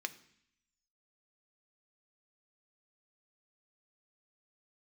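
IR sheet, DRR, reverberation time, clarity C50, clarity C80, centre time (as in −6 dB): 8.5 dB, 0.65 s, 16.5 dB, 19.5 dB, 4 ms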